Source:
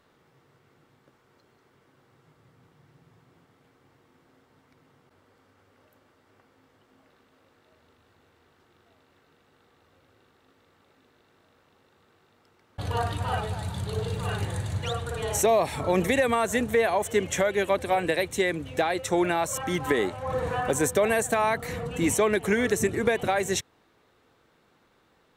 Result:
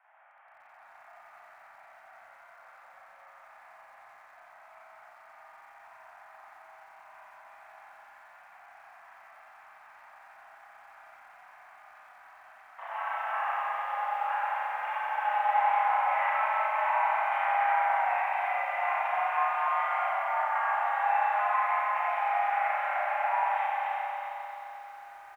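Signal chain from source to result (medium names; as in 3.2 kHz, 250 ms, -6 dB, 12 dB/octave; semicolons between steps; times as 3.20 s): level rider gain up to 4 dB; saturation -21.5 dBFS, distortion -8 dB; on a send: feedback delay 289 ms, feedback 27%, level -12 dB; on the sum: compression 10:1, threshold -30 dBFS, peak gain reduction 8.5 dB; formant shift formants -3 st; in parallel at +1 dB: peak limiter -31.5 dBFS, peak gain reduction 10.5 dB; on the sum: harmony voices -12 st -6 dB; spring tank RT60 3.3 s, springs 31/43 ms, chirp 80 ms, DRR -9 dB; mistuned SSB +390 Hz 290–2100 Hz; bit-crushed delay 89 ms, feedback 80%, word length 8-bit, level -14 dB; trim -8.5 dB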